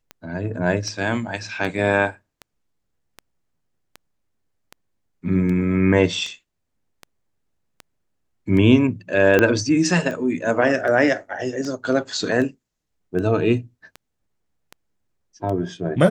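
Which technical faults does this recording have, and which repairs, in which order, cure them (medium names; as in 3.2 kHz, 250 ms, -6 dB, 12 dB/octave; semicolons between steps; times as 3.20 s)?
tick 78 rpm -19 dBFS
9.39 s: pop -4 dBFS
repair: de-click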